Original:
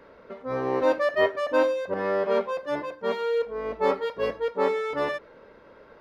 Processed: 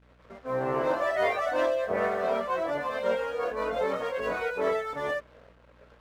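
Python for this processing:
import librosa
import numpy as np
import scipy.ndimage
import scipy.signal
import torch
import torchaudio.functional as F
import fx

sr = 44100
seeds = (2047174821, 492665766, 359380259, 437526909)

p1 = fx.wiener(x, sr, points=9)
p2 = fx.low_shelf(p1, sr, hz=340.0, db=-6.5)
p3 = fx.over_compress(p2, sr, threshold_db=-29.0, ratio=-1.0)
p4 = p2 + (p3 * 10.0 ** (-1.0 / 20.0))
p5 = fx.echo_pitch(p4, sr, ms=186, semitones=2, count=2, db_per_echo=-3.0)
p6 = fx.chorus_voices(p5, sr, voices=6, hz=0.68, base_ms=22, depth_ms=1.0, mix_pct=50)
p7 = np.sign(p6) * np.maximum(np.abs(p6) - 10.0 ** (-50.5 / 20.0), 0.0)
p8 = fx.add_hum(p7, sr, base_hz=60, snr_db=31)
y = p8 * 10.0 ** (-3.5 / 20.0)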